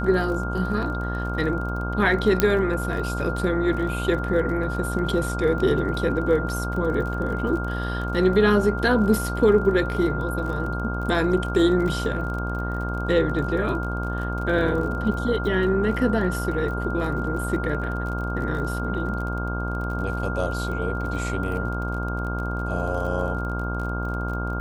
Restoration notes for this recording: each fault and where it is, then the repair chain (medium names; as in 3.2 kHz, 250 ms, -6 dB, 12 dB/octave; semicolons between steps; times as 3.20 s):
buzz 60 Hz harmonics 26 -28 dBFS
crackle 34 per s -32 dBFS
whine 1.4 kHz -31 dBFS
2.40 s: pop -3 dBFS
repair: de-click; band-stop 1.4 kHz, Q 30; de-hum 60 Hz, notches 26